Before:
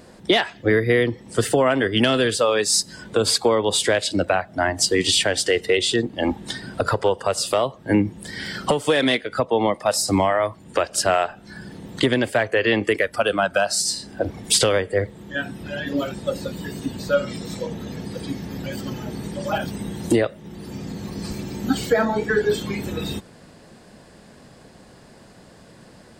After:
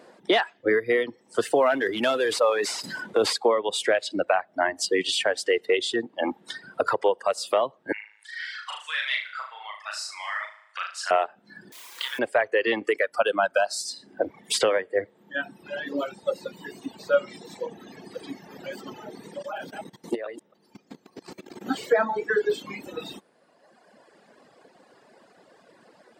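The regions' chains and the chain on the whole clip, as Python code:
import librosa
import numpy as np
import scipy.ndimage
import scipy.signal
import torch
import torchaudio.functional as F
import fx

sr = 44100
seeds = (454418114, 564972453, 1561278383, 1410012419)

y = fx.chain(x, sr, fx.cvsd(bps=64000),
    fx.sustainer(db_per_s=22.0), at=(1.53, 3.33))
y = fx.chain(y, sr, fx.highpass(hz=1400.0, slope=24),
    fx.air_absorb(metres=65.0),
    fx.room_flutter(wall_m=6.5, rt60_s=0.88), at=(7.92, 11.11))
y = fx.chain(y, sr, fx.cheby_ripple_highpass(hz=910.0, ripple_db=6),
    fx.quant_dither(seeds[0], bits=6, dither='triangular'),
    fx.room_flutter(wall_m=5.3, rt60_s=0.41), at=(11.72, 12.19))
y = fx.chain(y, sr, fx.reverse_delay(ms=145, wet_db=-7),
    fx.level_steps(step_db=15), at=(19.38, 21.66))
y = scipy.signal.sosfilt(scipy.signal.butter(2, 380.0, 'highpass', fs=sr, output='sos'), y)
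y = fx.dereverb_blind(y, sr, rt60_s=1.8)
y = fx.high_shelf(y, sr, hz=3500.0, db=-11.5)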